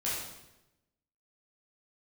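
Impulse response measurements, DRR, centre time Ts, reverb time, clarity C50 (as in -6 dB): -8.5 dB, 69 ms, 0.95 s, 0.0 dB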